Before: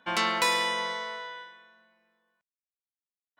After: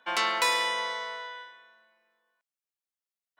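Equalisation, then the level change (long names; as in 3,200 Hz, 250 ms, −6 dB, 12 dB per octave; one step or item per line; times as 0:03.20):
high-pass filter 420 Hz 12 dB per octave
0.0 dB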